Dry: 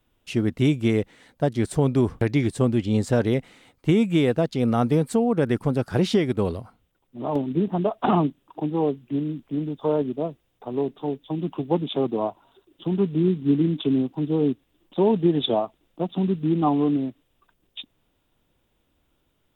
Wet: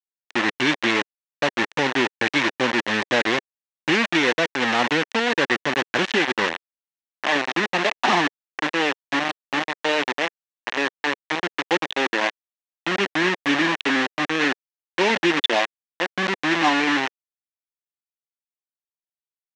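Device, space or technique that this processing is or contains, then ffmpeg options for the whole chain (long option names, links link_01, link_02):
hand-held game console: -af "acrusher=bits=3:mix=0:aa=0.000001,highpass=430,equalizer=frequency=440:width_type=q:width=4:gain=-7,equalizer=frequency=670:width_type=q:width=4:gain=-5,equalizer=frequency=1300:width_type=q:width=4:gain=-3,equalizer=frequency=1800:width_type=q:width=4:gain=7,equalizer=frequency=2700:width_type=q:width=4:gain=3,equalizer=frequency=4800:width_type=q:width=4:gain=-6,lowpass=frequency=5300:width=0.5412,lowpass=frequency=5300:width=1.3066,volume=5.5dB"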